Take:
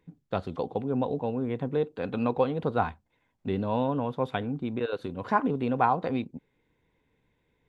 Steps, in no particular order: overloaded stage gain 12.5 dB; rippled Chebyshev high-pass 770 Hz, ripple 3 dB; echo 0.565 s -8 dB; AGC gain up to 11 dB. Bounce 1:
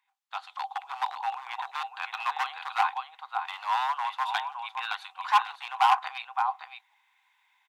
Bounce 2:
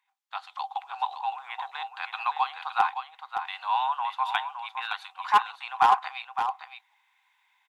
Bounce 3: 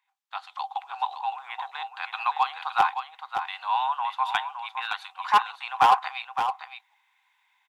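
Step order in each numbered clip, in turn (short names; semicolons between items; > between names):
AGC > echo > overloaded stage > rippled Chebyshev high-pass; AGC > rippled Chebyshev high-pass > overloaded stage > echo; rippled Chebyshev high-pass > AGC > overloaded stage > echo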